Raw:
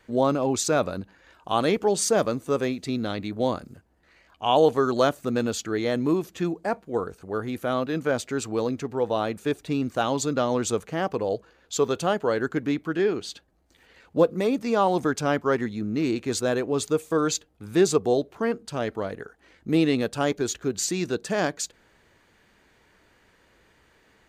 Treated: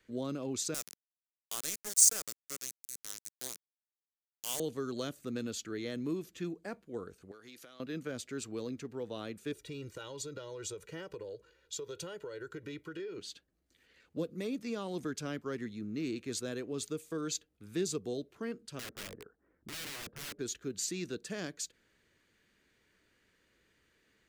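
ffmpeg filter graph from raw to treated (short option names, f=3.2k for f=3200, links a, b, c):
-filter_complex "[0:a]asettb=1/sr,asplit=3[a][b][c];[a]atrim=end=0.744[d];[b]atrim=start=0.74:end=4.6,asetpts=PTS-STARTPTS,afade=t=in:d=0.004:c=qsin,afade=t=out:st=3.856:d=0.004:c=qsin,highpass=f=1.5k:p=1,aeval=exprs='val(0)*gte(abs(val(0)),0.0447)':c=same,highshelf=f=4.9k:t=q:w=1.5:g=12.5[e];[c]atrim=start=4.596[f];[d][e]acrossfade=d=0.004:c1=hsin:c2=qsin[g];[g][f]acrossfade=d=0.004:c1=qsin:c2=hsin,asettb=1/sr,asplit=3[h][i][j];[h]atrim=end=7.314[k];[i]atrim=start=7.31:end=7.8,asetpts=PTS-STARTPTS,afade=t=in:d=0.004:c=qsin,afade=t=out:st=0.486:d=0.004:c=qsin,highpass=f=660:p=1,equalizer=f=5.1k:w=1.1:g=10,acompressor=threshold=-36dB:ratio=16:attack=3.2:release=140:knee=1:detection=peak[l];[j]atrim=start=7.796[m];[k][l]acrossfade=d=0.004:c1=hsin:c2=qsin[n];[n][m]acrossfade=d=0.004:c1=qsin:c2=hsin,asettb=1/sr,asplit=3[o][p][q];[o]atrim=end=9.524[r];[p]atrim=start=9.52:end=13.18,asetpts=PTS-STARTPTS,afade=t=in:d=0.004:c=qsin,afade=t=out:st=3.656:d=0.004:c=qsin,aecho=1:1:2.1:0.93,atrim=end_sample=161406,acompressor=threshold=-27dB:ratio=6:attack=3.2:release=140:knee=1:detection=peak[s];[q]atrim=start=13.176[t];[r][s]acrossfade=d=0.004:c1=hsin:c2=qsin[u];[u][t]acrossfade=d=0.004:c1=qsin:c2=hsin,asettb=1/sr,asplit=3[v][w][x];[v]atrim=end=18.794[y];[w]atrim=start=18.79:end=20.39,asetpts=PTS-STARTPTS,afade=t=in:d=0.004:c=qsin,afade=t=out:st=1.596:d=0.004:c=qsin,lowpass=f=1.3k:w=0.5412,lowpass=f=1.3k:w=1.3066,aeval=exprs='(mod(23.7*val(0)+1,2)-1)/23.7':c=same[z];[x]atrim=start=20.386[aa];[y][z]acrossfade=d=0.004:c1=hsin:c2=qsin[ab];[ab][aa]acrossfade=d=0.004:c1=qsin:c2=hsin,equalizer=f=830:t=o:w=1.1:g=-11.5,acrossover=split=340|3000[ac][ad][ae];[ad]acompressor=threshold=-30dB:ratio=6[af];[ac][af][ae]amix=inputs=3:normalize=0,lowshelf=f=150:g=-6,volume=-8.5dB"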